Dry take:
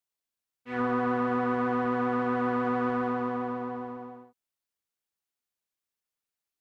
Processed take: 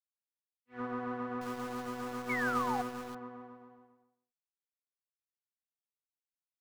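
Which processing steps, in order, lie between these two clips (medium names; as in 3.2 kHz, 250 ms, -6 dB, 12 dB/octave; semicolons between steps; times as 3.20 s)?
1.41–3.15 s: small samples zeroed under -31.5 dBFS; 2.29–2.82 s: painted sound fall 710–2300 Hz -28 dBFS; upward expansion 2.5:1, over -46 dBFS; trim -5 dB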